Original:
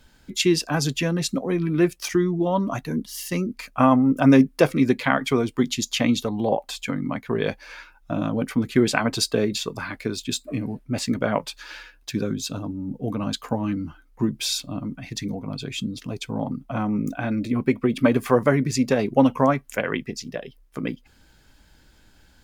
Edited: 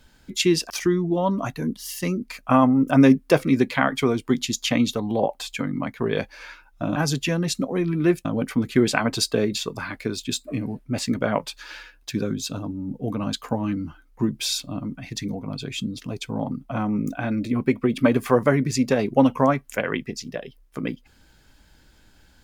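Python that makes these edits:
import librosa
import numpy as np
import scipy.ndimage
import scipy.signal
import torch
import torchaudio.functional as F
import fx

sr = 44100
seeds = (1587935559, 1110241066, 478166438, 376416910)

y = fx.edit(x, sr, fx.move(start_s=0.7, length_s=1.29, to_s=8.25), tone=tone)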